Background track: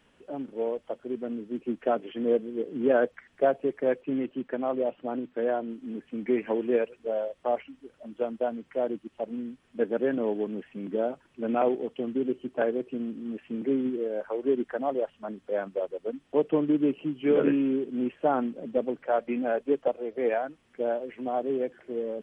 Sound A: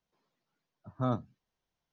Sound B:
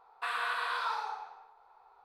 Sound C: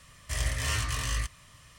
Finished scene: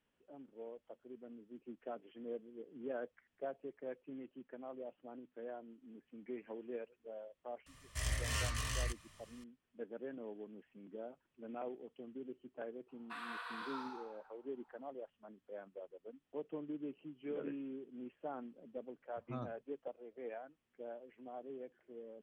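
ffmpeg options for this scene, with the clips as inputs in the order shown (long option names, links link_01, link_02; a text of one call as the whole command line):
ffmpeg -i bed.wav -i cue0.wav -i cue1.wav -i cue2.wav -filter_complex "[0:a]volume=-19.5dB[link_01];[3:a]atrim=end=1.78,asetpts=PTS-STARTPTS,volume=-7.5dB,afade=type=in:duration=0.004:curve=hsin,afade=type=out:start_time=1.776:duration=0.004:curve=hsin,adelay=7660[link_02];[2:a]atrim=end=2.04,asetpts=PTS-STARTPTS,volume=-12.5dB,afade=type=in:duration=0.004:curve=hsin,afade=type=out:start_time=2.036:duration=0.004:curve=hsin,adelay=12880[link_03];[1:a]atrim=end=1.92,asetpts=PTS-STARTPTS,volume=-13.5dB,afade=type=in:duration=0.004:curve=hsin,afade=type=out:start_time=1.916:duration=0.004:curve=hsin,adelay=18300[link_04];[link_01][link_02][link_03][link_04]amix=inputs=4:normalize=0" out.wav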